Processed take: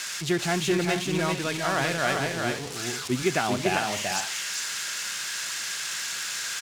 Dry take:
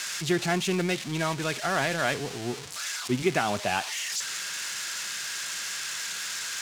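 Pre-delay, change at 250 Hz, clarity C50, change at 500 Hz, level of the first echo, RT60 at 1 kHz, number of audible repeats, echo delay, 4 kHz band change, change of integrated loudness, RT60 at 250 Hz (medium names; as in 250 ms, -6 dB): no reverb, +2.0 dB, no reverb, +2.0 dB, -3.5 dB, no reverb, 2, 394 ms, +1.5 dB, +2.0 dB, no reverb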